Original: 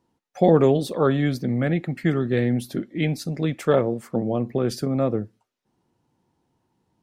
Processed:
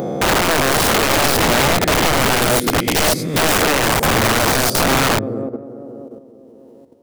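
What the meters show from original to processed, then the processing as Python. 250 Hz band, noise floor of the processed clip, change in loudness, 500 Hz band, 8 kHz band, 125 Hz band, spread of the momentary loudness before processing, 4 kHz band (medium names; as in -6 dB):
+2.5 dB, -43 dBFS, +8.0 dB, +4.0 dB, +25.0 dB, +2.0 dB, 8 LU, +21.0 dB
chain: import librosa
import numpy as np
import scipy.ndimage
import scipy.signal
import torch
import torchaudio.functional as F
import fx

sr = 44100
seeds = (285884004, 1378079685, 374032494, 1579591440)

p1 = fx.spec_swells(x, sr, rise_s=1.25)
p2 = fx.high_shelf(p1, sr, hz=9500.0, db=9.5)
p3 = fx.rev_freeverb(p2, sr, rt60_s=0.63, hf_ratio=0.4, predelay_ms=65, drr_db=16.5)
p4 = np.clip(p3, -10.0 ** (-18.0 / 20.0), 10.0 ** (-18.0 / 20.0))
p5 = p3 + F.gain(torch.from_numpy(p4), -5.0).numpy()
p6 = scipy.signal.sosfilt(scipy.signal.butter(2, 48.0, 'highpass', fs=sr, output='sos'), p5)
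p7 = p6 + fx.echo_tape(p6, sr, ms=197, feedback_pct=79, wet_db=-9.5, lp_hz=1400.0, drive_db=2.0, wow_cents=40, dry=0)
p8 = fx.level_steps(p7, sr, step_db=10)
p9 = fx.low_shelf(p8, sr, hz=450.0, db=3.5)
p10 = (np.mod(10.0 ** (15.0 / 20.0) * p9 + 1.0, 2.0) - 1.0) / 10.0 ** (15.0 / 20.0)
y = F.gain(torch.from_numpy(p10), 5.0).numpy()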